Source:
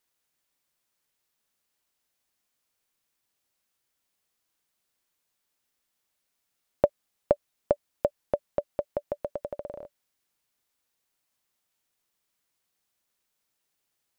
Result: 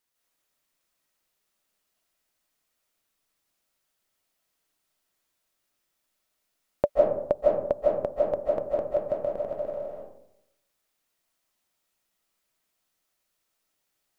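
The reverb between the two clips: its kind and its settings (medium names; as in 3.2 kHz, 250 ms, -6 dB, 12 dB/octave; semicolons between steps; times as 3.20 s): algorithmic reverb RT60 0.79 s, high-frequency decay 0.4×, pre-delay 115 ms, DRR -4 dB; trim -2.5 dB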